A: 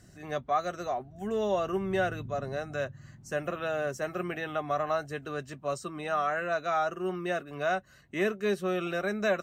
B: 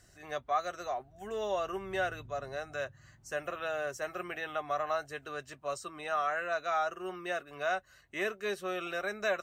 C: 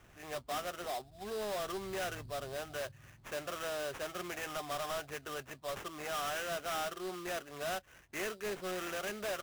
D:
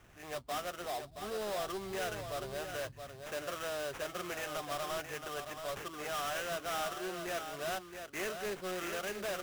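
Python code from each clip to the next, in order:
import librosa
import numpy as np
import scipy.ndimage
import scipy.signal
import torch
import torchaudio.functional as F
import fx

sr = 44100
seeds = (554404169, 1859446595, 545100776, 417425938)

y1 = fx.peak_eq(x, sr, hz=190.0, db=-13.5, octaves=1.9)
y1 = y1 * librosa.db_to_amplitude(-1.0)
y2 = fx.sample_hold(y1, sr, seeds[0], rate_hz=4400.0, jitter_pct=20)
y2 = 10.0 ** (-35.0 / 20.0) * np.tanh(y2 / 10.0 ** (-35.0 / 20.0))
y2 = y2 * librosa.db_to_amplitude(1.0)
y3 = y2 + 10.0 ** (-7.5 / 20.0) * np.pad(y2, (int(672 * sr / 1000.0), 0))[:len(y2)]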